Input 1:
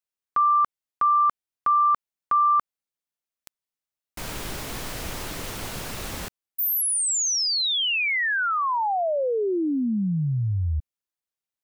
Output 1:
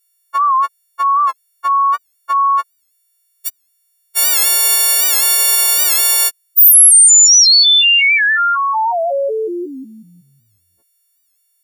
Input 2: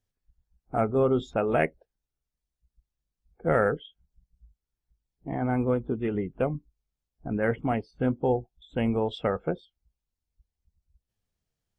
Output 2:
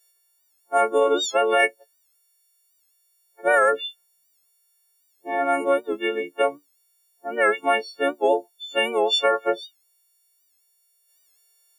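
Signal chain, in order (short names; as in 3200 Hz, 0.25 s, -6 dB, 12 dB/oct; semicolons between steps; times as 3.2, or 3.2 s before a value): frequency quantiser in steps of 4 st; HPF 390 Hz 24 dB/oct; limiter -17.5 dBFS; high shelf 3400 Hz +8 dB; record warp 78 rpm, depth 100 cents; gain +7.5 dB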